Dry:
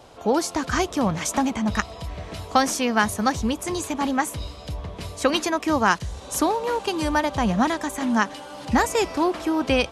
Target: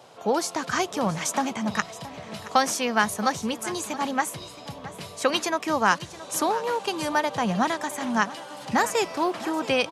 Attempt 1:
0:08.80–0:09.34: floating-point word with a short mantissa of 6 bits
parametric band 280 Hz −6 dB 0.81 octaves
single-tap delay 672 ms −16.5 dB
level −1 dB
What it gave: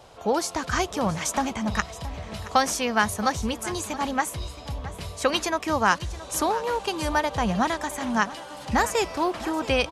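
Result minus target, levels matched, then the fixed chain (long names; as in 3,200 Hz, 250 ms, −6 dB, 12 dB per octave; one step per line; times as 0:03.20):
125 Hz band +4.5 dB
0:08.80–0:09.34: floating-point word with a short mantissa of 6 bits
high-pass filter 130 Hz 24 dB per octave
parametric band 280 Hz −6 dB 0.81 octaves
single-tap delay 672 ms −16.5 dB
level −1 dB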